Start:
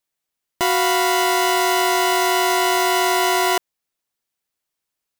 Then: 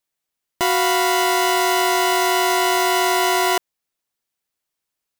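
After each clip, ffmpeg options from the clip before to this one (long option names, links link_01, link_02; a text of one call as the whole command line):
ffmpeg -i in.wav -af anull out.wav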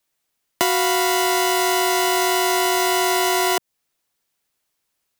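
ffmpeg -i in.wav -filter_complex "[0:a]acrossover=split=160|680|1700|5100[link_01][link_02][link_03][link_04][link_05];[link_01]acompressor=threshold=-56dB:ratio=4[link_06];[link_02]acompressor=threshold=-30dB:ratio=4[link_07];[link_03]acompressor=threshold=-34dB:ratio=4[link_08];[link_04]acompressor=threshold=-34dB:ratio=4[link_09];[link_05]acompressor=threshold=-30dB:ratio=4[link_10];[link_06][link_07][link_08][link_09][link_10]amix=inputs=5:normalize=0,volume=7dB" out.wav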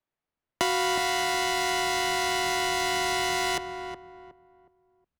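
ffmpeg -i in.wav -filter_complex "[0:a]adynamicsmooth=sensitivity=5:basefreq=2000,asplit=2[link_01][link_02];[link_02]adelay=366,lowpass=frequency=1200:poles=1,volume=-6.5dB,asplit=2[link_03][link_04];[link_04]adelay=366,lowpass=frequency=1200:poles=1,volume=0.32,asplit=2[link_05][link_06];[link_06]adelay=366,lowpass=frequency=1200:poles=1,volume=0.32,asplit=2[link_07][link_08];[link_08]adelay=366,lowpass=frequency=1200:poles=1,volume=0.32[link_09];[link_01][link_03][link_05][link_07][link_09]amix=inputs=5:normalize=0,asubboost=boost=4.5:cutoff=210,volume=-5.5dB" out.wav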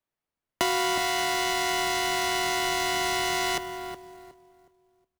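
ffmpeg -i in.wav -af "acrusher=bits=3:mode=log:mix=0:aa=0.000001,aecho=1:1:191|382|573|764:0.0708|0.0389|0.0214|0.0118" out.wav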